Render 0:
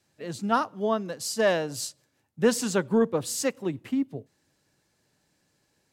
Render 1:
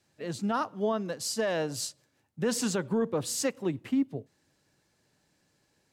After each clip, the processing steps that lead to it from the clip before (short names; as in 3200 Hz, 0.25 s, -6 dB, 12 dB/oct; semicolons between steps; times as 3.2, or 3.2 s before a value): high shelf 10000 Hz -4.5 dB; limiter -19.5 dBFS, peak gain reduction 9 dB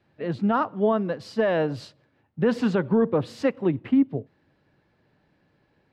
air absorption 390 m; gain +8 dB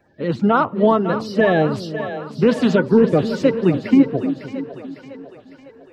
bin magnitudes rounded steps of 30 dB; split-band echo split 410 Hz, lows 0.305 s, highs 0.553 s, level -10 dB; gain +7.5 dB